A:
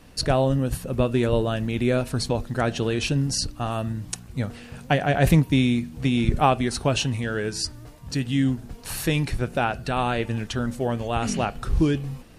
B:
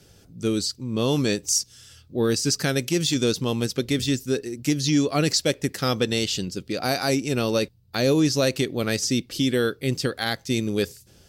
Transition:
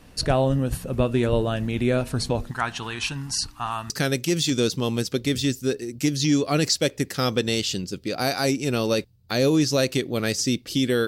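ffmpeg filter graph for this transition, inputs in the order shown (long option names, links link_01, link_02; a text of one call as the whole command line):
ffmpeg -i cue0.wav -i cue1.wav -filter_complex "[0:a]asettb=1/sr,asplit=3[link_01][link_02][link_03];[link_01]atrim=end=2.514[link_04];[link_02]atrim=start=2.51:end=3.9,asetpts=PTS-STARTPTS,afade=type=in:duration=0.004:curve=qsin,afade=type=out:start_time=1.386:duration=0.004:curve=qsin,lowshelf=frequency=720:width_type=q:width=3:gain=-9[link_05];[link_03]atrim=start=3.896[link_06];[link_04][link_05]acrossfade=duration=0.004:curve1=hsin:curve2=qsin[link_07];[link_07][link_06]acrossfade=duration=0.004:curve1=qsin:curve2=hsin,apad=whole_dur=11.07,atrim=end=11.07,atrim=end=3.902[link_08];[1:a]atrim=start=2.538:end=9.71[link_09];[link_08][link_09]acrossfade=duration=0.004:curve1=hsin:curve2=hsin" out.wav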